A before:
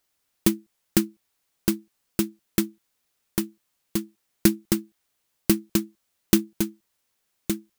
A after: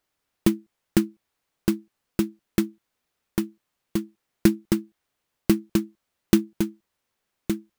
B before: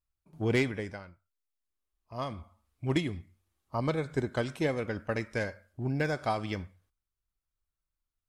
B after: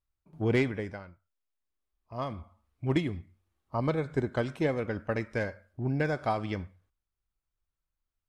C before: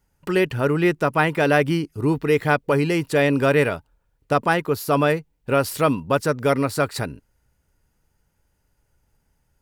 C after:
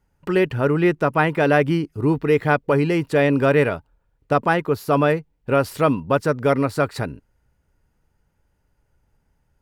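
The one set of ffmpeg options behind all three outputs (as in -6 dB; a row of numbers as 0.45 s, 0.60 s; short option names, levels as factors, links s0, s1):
-af "highshelf=f=3700:g=-10,volume=1.19"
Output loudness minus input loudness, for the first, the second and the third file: 0.0 LU, +1.0 LU, +1.0 LU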